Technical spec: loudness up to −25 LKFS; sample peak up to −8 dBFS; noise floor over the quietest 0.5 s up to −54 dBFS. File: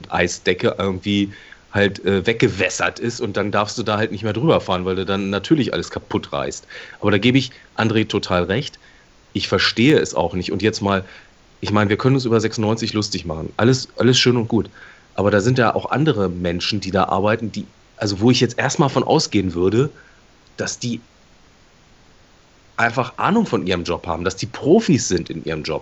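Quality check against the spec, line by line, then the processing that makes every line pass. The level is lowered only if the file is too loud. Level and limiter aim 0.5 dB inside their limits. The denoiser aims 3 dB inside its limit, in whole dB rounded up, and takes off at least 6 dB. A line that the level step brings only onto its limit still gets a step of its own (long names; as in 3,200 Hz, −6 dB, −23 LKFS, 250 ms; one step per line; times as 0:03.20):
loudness −19.0 LKFS: out of spec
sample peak −2.5 dBFS: out of spec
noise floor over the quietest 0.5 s −51 dBFS: out of spec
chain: level −6.5 dB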